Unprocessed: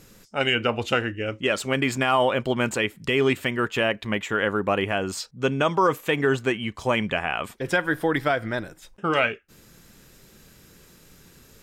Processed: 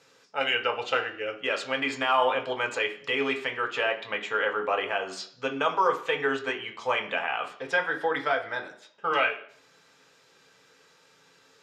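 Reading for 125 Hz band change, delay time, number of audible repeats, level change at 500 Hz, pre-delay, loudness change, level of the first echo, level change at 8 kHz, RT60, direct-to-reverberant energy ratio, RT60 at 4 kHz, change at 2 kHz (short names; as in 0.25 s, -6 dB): -19.0 dB, none, none, -4.5 dB, 3 ms, -3.5 dB, none, -10.0 dB, 0.55 s, 1.5 dB, 0.65 s, -2.0 dB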